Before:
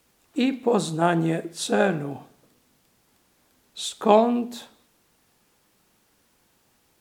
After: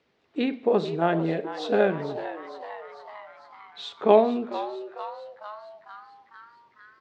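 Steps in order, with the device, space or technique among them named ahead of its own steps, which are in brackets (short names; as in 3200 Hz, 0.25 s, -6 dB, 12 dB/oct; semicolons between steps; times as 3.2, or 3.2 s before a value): frequency-shifting delay pedal into a guitar cabinet (frequency-shifting echo 0.45 s, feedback 62%, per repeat +140 Hz, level -12.5 dB; speaker cabinet 87–4400 Hz, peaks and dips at 420 Hz +7 dB, 620 Hz +4 dB, 2000 Hz +4 dB); gain -4.5 dB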